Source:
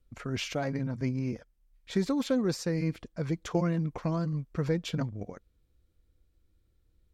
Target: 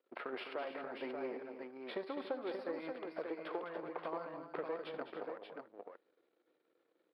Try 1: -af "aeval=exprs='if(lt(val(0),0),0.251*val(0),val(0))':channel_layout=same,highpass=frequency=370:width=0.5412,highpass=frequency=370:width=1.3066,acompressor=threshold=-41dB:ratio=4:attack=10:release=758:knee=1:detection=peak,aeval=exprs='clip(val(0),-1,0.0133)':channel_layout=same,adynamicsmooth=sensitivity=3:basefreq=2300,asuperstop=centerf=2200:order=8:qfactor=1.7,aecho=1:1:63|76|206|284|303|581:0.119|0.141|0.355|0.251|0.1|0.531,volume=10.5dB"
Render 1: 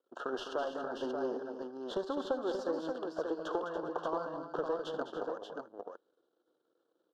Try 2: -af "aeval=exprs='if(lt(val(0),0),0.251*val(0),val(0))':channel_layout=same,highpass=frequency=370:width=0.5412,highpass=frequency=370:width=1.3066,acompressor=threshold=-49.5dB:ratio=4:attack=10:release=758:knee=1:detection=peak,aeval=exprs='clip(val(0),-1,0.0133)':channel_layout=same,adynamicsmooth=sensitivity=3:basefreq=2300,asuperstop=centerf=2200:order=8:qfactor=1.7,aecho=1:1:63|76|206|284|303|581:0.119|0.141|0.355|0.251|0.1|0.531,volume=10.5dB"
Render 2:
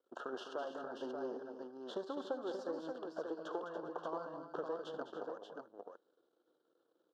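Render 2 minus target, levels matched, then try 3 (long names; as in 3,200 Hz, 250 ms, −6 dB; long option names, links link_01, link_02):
2,000 Hz band −4.0 dB
-af "aeval=exprs='if(lt(val(0),0),0.251*val(0),val(0))':channel_layout=same,highpass=frequency=370:width=0.5412,highpass=frequency=370:width=1.3066,acompressor=threshold=-49.5dB:ratio=4:attack=10:release=758:knee=1:detection=peak,aeval=exprs='clip(val(0),-1,0.0133)':channel_layout=same,adynamicsmooth=sensitivity=3:basefreq=2300,asuperstop=centerf=6800:order=8:qfactor=1.7,aecho=1:1:63|76|206|284|303|581:0.119|0.141|0.355|0.251|0.1|0.531,volume=10.5dB"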